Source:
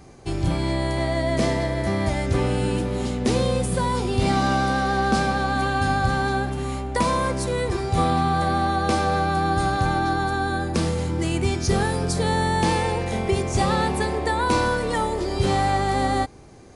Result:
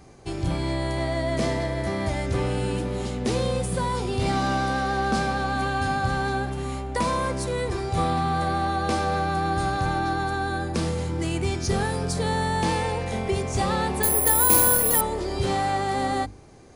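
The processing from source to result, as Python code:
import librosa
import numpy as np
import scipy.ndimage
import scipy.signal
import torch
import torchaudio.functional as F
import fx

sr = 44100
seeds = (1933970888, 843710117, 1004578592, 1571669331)

p1 = fx.hum_notches(x, sr, base_hz=50, count=7)
p2 = np.clip(p1, -10.0 ** (-21.0 / 20.0), 10.0 ** (-21.0 / 20.0))
p3 = p1 + (p2 * librosa.db_to_amplitude(-10.5))
p4 = fx.resample_bad(p3, sr, factor=4, down='none', up='zero_stuff', at=(14.03, 15.01))
y = p4 * librosa.db_to_amplitude(-4.5)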